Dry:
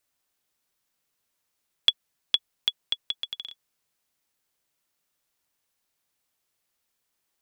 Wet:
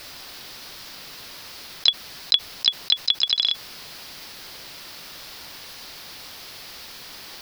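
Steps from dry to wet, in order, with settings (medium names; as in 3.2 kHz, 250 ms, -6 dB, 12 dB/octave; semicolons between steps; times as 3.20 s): resonant high shelf 5.9 kHz -6.5 dB, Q 3; harmony voices +3 st -12 dB, +7 st -17 dB; level flattener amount 70%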